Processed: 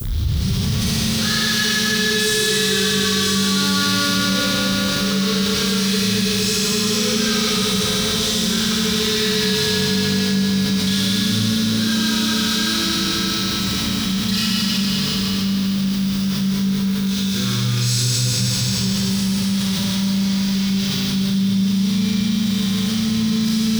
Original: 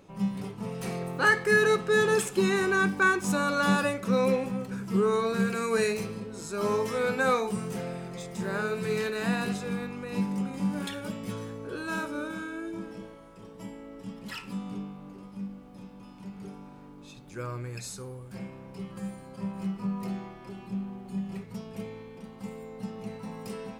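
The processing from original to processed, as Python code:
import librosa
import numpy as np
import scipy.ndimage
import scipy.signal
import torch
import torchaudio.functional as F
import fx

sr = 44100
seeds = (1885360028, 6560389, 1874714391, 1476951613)

p1 = fx.tape_start_head(x, sr, length_s=0.41)
p2 = fx.notch_comb(p1, sr, f0_hz=300.0)
p3 = fx.fuzz(p2, sr, gain_db=48.0, gate_db=-47.0)
p4 = p2 + (p3 * 10.0 ** (-5.0 / 20.0))
p5 = scipy.signal.sosfilt(scipy.signal.butter(2, 48.0, 'highpass', fs=sr, output='sos'), p4)
p6 = fx.band_shelf(p5, sr, hz=4400.0, db=9.5, octaves=1.1)
p7 = fx.dmg_noise_colour(p6, sr, seeds[0], colour='violet', level_db=-43.0)
p8 = fx.tone_stack(p7, sr, knobs='6-0-2')
p9 = p8 + fx.echo_heads(p8, sr, ms=77, heads='second and third', feedback_pct=71, wet_db=-9, dry=0)
p10 = fx.rev_schroeder(p9, sr, rt60_s=3.2, comb_ms=28, drr_db=-8.5)
y = fx.env_flatten(p10, sr, amount_pct=70)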